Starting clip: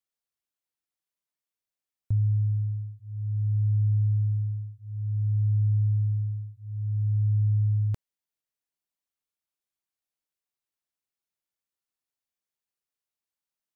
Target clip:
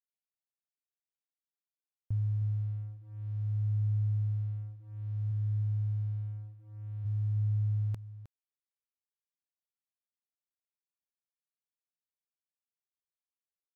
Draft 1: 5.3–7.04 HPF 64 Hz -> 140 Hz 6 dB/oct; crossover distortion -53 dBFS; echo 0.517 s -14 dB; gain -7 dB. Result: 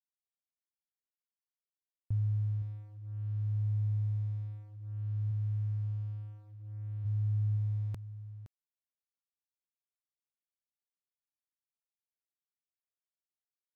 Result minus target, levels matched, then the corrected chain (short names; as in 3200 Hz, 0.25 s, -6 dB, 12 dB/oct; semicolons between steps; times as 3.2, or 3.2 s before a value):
echo 0.205 s late
5.3–7.04 HPF 64 Hz -> 140 Hz 6 dB/oct; crossover distortion -53 dBFS; echo 0.312 s -14 dB; gain -7 dB